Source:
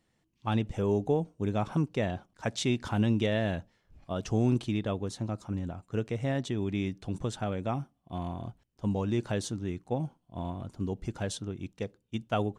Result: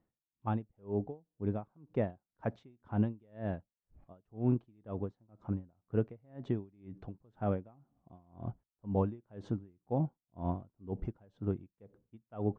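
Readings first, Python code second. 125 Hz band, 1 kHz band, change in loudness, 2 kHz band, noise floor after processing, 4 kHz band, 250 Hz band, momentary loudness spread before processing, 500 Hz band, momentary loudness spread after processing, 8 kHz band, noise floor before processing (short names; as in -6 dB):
-5.5 dB, -6.5 dB, -5.5 dB, -15.0 dB, under -85 dBFS, under -25 dB, -6.0 dB, 11 LU, -6.0 dB, 15 LU, under -35 dB, -75 dBFS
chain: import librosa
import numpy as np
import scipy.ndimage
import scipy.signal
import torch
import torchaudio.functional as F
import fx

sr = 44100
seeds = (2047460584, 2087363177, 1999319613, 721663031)

y = scipy.signal.sosfilt(scipy.signal.butter(2, 1200.0, 'lowpass', fs=sr, output='sos'), x)
y = fx.rider(y, sr, range_db=10, speed_s=2.0)
y = y * 10.0 ** (-34 * (0.5 - 0.5 * np.cos(2.0 * np.pi * 2.0 * np.arange(len(y)) / sr)) / 20.0)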